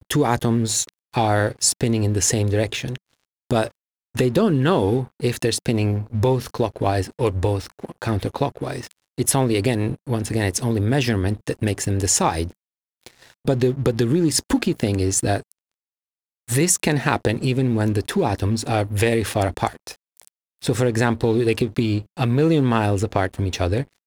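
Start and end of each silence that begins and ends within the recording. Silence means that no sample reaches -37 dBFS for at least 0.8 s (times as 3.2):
15.52–16.48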